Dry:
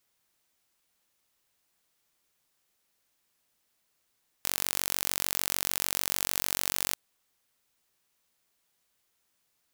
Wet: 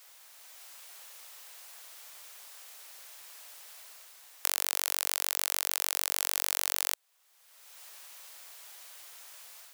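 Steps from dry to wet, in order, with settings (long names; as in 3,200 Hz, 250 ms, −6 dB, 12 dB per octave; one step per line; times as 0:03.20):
high-pass filter 540 Hz 24 dB per octave
automatic gain control gain up to 5.5 dB
floating-point word with a short mantissa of 6 bits
multiband upward and downward compressor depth 70%
level −1 dB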